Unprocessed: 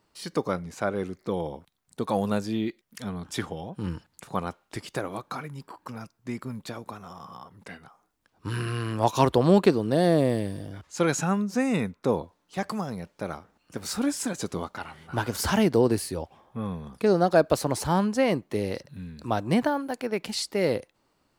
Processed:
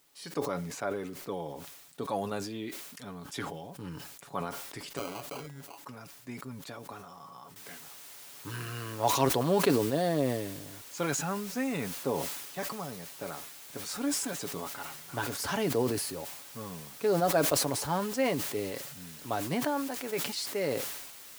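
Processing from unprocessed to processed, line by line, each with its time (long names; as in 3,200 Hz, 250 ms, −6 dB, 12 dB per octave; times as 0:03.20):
0:04.97–0:05.83: sample-rate reduction 1,800 Hz
0:07.56: noise floor change −61 dB −43 dB
whole clip: low-shelf EQ 150 Hz −9 dB; comb filter 7.1 ms, depth 45%; level that may fall only so fast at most 45 dB per second; level −6.5 dB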